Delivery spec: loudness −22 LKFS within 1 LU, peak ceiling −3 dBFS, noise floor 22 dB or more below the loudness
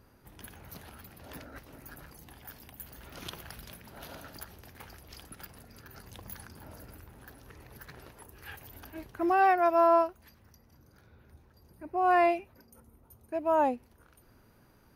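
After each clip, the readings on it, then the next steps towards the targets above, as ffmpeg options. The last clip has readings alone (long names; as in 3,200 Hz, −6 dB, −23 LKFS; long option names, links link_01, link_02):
integrated loudness −27.0 LKFS; sample peak −14.0 dBFS; target loudness −22.0 LKFS
→ -af "volume=5dB"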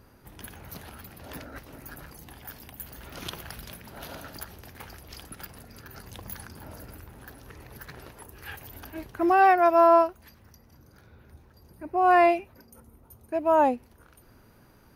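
integrated loudness −22.0 LKFS; sample peak −9.0 dBFS; background noise floor −57 dBFS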